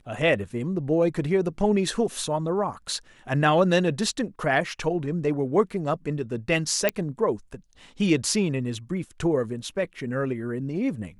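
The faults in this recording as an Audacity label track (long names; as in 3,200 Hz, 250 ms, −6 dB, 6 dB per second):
6.890000	6.890000	click −7 dBFS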